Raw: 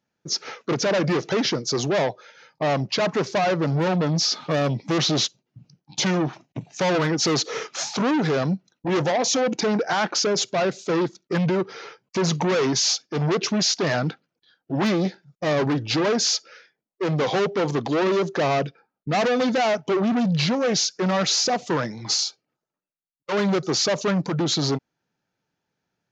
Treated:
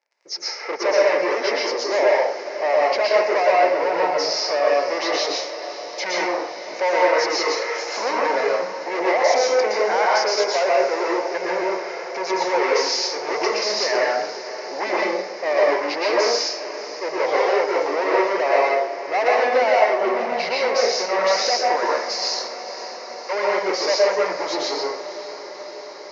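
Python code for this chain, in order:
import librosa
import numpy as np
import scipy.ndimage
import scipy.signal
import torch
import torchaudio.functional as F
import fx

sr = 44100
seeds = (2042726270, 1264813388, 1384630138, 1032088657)

y = fx.high_shelf(x, sr, hz=2800.0, db=-10.0)
y = fx.dmg_crackle(y, sr, seeds[0], per_s=23.0, level_db=-47.0)
y = fx.cabinet(y, sr, low_hz=460.0, low_slope=24, high_hz=6100.0, hz=(560.0, 910.0, 1300.0, 2100.0, 3400.0, 5200.0), db=(3, 4, -4, 9, -8, 7))
y = fx.echo_diffused(y, sr, ms=539, feedback_pct=75, wet_db=-14.0)
y = fx.rev_plate(y, sr, seeds[1], rt60_s=0.64, hf_ratio=0.8, predelay_ms=105, drr_db=-4.0)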